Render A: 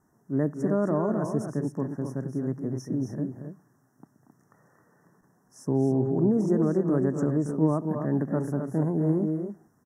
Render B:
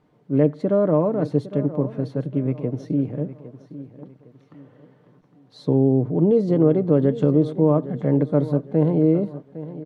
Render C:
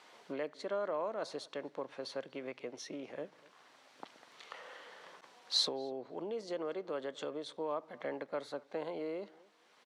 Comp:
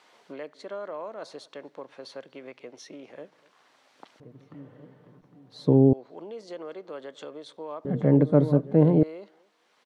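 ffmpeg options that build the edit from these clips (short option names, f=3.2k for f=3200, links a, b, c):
-filter_complex "[1:a]asplit=2[a][b];[2:a]asplit=3[c][d][e];[c]atrim=end=4.202[f];[a]atrim=start=4.198:end=5.932[g];[d]atrim=start=5.928:end=7.852[h];[b]atrim=start=7.848:end=9.032[i];[e]atrim=start=9.028[j];[f][g]acrossfade=d=0.004:c1=hsin:c2=hsin[k];[k][h]acrossfade=d=0.004:c1=hsin:c2=hsin[l];[l][i]acrossfade=d=0.004:c1=hsin:c2=hsin[m];[m][j]acrossfade=d=0.004:c1=hsin:c2=hsin"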